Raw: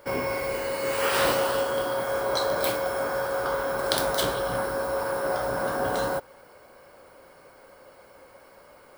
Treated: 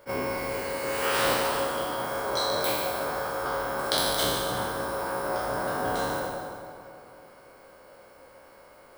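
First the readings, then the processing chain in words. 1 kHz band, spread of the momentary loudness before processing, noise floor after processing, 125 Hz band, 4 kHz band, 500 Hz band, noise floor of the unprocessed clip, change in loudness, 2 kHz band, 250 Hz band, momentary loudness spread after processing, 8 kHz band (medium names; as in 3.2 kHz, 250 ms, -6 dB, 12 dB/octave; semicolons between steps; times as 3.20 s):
0.0 dB, 5 LU, -53 dBFS, -0.5 dB, +2.0 dB, -3.5 dB, -53 dBFS, -1.5 dB, -1.5 dB, 0.0 dB, 8 LU, +1.0 dB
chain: spectral sustain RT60 1.31 s; two-band feedback delay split 1.4 kHz, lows 265 ms, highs 144 ms, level -9 dB; attacks held to a fixed rise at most 420 dB/s; trim -4 dB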